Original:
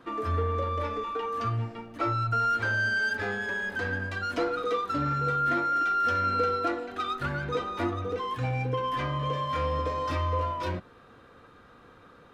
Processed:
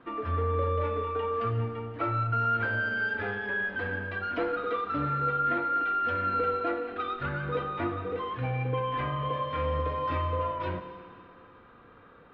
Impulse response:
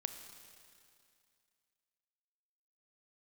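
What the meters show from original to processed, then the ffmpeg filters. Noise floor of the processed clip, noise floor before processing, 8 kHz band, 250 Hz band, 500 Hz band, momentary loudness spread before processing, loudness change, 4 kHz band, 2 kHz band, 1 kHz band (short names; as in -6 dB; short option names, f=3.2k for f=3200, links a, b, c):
-54 dBFS, -54 dBFS, n/a, -1.5 dB, 0.0 dB, 7 LU, -1.0 dB, -5.5 dB, -1.5 dB, -1.0 dB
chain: -filter_complex "[0:a]lowpass=f=3.2k:w=0.5412,lowpass=f=3.2k:w=1.3066[a];[1:a]atrim=start_sample=2205[b];[a][b]afir=irnorm=-1:irlink=0"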